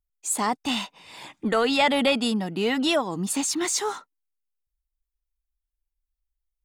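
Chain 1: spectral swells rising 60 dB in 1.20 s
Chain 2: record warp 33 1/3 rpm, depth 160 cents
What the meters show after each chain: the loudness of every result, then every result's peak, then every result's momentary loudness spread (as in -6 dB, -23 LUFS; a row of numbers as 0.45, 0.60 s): -20.5, -24.5 LUFS; -6.0, -11.0 dBFS; 12, 13 LU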